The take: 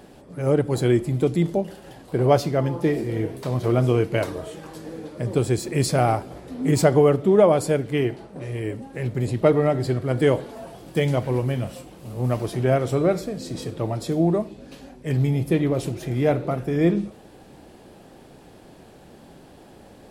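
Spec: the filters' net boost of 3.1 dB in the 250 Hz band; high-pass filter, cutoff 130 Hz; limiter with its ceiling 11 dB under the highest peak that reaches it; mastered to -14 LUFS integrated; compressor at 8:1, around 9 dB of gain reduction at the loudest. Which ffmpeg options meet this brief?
-af "highpass=130,equalizer=f=250:t=o:g=5,acompressor=threshold=0.112:ratio=8,volume=6.68,alimiter=limit=0.668:level=0:latency=1"

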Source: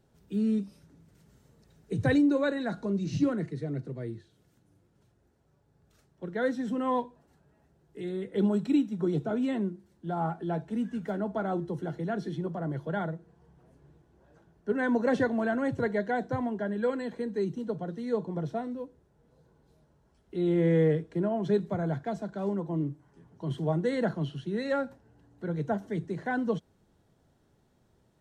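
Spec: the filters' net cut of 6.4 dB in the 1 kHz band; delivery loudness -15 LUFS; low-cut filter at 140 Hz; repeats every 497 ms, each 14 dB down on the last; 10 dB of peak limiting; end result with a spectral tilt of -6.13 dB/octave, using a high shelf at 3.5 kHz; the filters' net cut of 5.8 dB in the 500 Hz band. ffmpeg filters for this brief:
-af "highpass=140,equalizer=f=500:t=o:g=-5.5,equalizer=f=1000:t=o:g=-7.5,highshelf=f=3500:g=8,alimiter=level_in=1.5:limit=0.0631:level=0:latency=1,volume=0.668,aecho=1:1:497|994:0.2|0.0399,volume=11.9"

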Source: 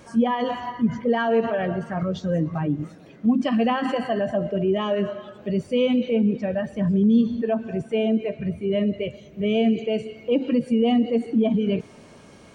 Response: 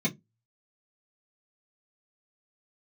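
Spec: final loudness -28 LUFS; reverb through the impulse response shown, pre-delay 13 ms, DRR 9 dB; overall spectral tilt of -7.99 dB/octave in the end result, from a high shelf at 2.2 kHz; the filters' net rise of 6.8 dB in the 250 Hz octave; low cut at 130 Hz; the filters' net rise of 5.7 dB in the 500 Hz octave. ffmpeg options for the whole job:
-filter_complex "[0:a]highpass=130,equalizer=f=250:t=o:g=7.5,equalizer=f=500:t=o:g=4.5,highshelf=f=2200:g=3.5,asplit=2[s0][s1];[1:a]atrim=start_sample=2205,adelay=13[s2];[s1][s2]afir=irnorm=-1:irlink=0,volume=0.15[s3];[s0][s3]amix=inputs=2:normalize=0,volume=0.178"

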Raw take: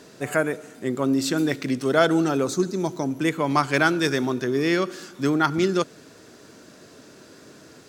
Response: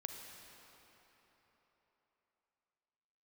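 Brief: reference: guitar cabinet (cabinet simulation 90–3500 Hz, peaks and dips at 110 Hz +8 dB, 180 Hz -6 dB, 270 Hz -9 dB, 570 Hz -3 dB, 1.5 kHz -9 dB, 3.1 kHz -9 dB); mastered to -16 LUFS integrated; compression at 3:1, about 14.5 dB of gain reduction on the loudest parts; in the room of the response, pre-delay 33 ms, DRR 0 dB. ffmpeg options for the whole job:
-filter_complex "[0:a]acompressor=threshold=0.02:ratio=3,asplit=2[s0][s1];[1:a]atrim=start_sample=2205,adelay=33[s2];[s1][s2]afir=irnorm=-1:irlink=0,volume=1.26[s3];[s0][s3]amix=inputs=2:normalize=0,highpass=90,equalizer=f=110:t=q:w=4:g=8,equalizer=f=180:t=q:w=4:g=-6,equalizer=f=270:t=q:w=4:g=-9,equalizer=f=570:t=q:w=4:g=-3,equalizer=f=1500:t=q:w=4:g=-9,equalizer=f=3100:t=q:w=4:g=-9,lowpass=f=3500:w=0.5412,lowpass=f=3500:w=1.3066,volume=9.44"

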